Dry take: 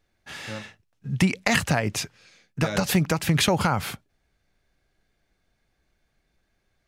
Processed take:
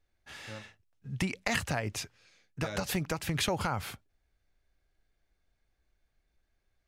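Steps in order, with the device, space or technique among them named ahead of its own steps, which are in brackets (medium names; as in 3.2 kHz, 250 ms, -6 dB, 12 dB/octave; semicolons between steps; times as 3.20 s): low shelf boost with a cut just above (bass shelf 86 Hz +8 dB; peaking EQ 170 Hz -5.5 dB 1 oct); trim -8.5 dB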